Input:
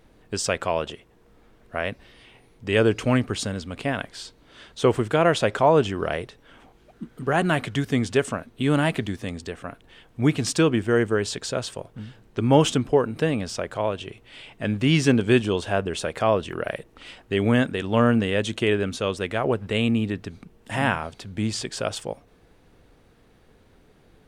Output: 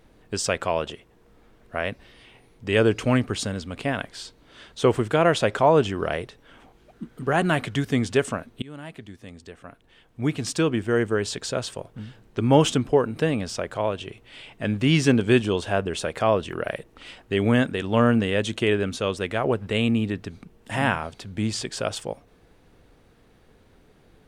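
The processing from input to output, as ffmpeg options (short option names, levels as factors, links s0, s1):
-filter_complex "[0:a]asplit=2[s0][s1];[s0]atrim=end=8.62,asetpts=PTS-STARTPTS,afade=t=out:st=8.616:d=0.004:c=hsin:silence=0.0707946[s2];[s1]atrim=start=8.62,asetpts=PTS-STARTPTS,afade=t=in:d=2.86:silence=0.0707946[s3];[s2][s3]concat=n=2:v=0:a=1"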